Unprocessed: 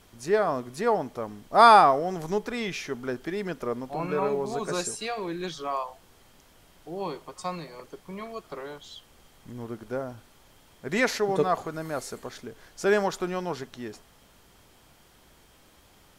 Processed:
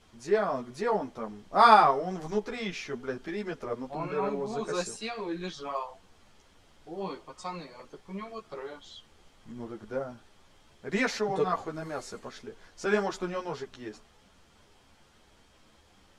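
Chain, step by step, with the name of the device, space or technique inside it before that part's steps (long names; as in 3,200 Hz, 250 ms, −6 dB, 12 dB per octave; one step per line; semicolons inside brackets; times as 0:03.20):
string-machine ensemble chorus (string-ensemble chorus; low-pass filter 7,400 Hz 12 dB per octave)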